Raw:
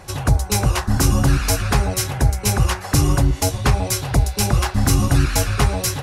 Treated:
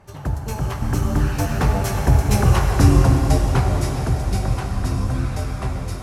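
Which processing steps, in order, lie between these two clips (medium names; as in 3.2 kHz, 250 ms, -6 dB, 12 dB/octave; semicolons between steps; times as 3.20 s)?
Doppler pass-by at 2.48 s, 25 m/s, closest 19 m; treble shelf 2.4 kHz -11 dB; plate-style reverb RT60 4.7 s, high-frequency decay 0.95×, DRR 1.5 dB; trim +2.5 dB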